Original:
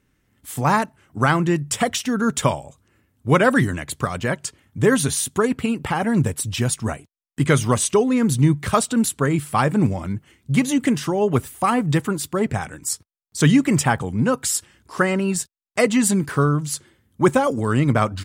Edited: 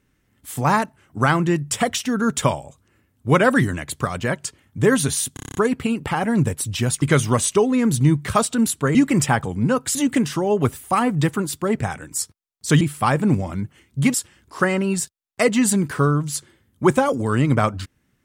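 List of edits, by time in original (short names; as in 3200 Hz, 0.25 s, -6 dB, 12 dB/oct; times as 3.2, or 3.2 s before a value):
5.34 stutter 0.03 s, 8 plays
6.81–7.4 cut
9.33–10.66 swap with 13.52–14.52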